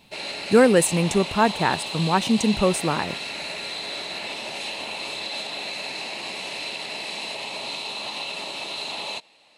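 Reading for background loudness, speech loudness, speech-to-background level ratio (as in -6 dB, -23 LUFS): -30.0 LUFS, -21.0 LUFS, 9.0 dB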